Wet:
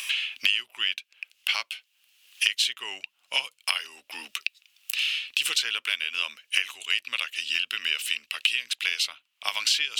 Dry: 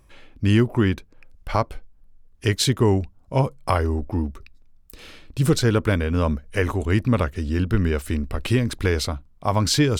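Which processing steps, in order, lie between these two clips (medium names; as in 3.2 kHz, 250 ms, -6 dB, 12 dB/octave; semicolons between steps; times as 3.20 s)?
resonant high-pass 2.8 kHz, resonance Q 5.5; three bands compressed up and down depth 100%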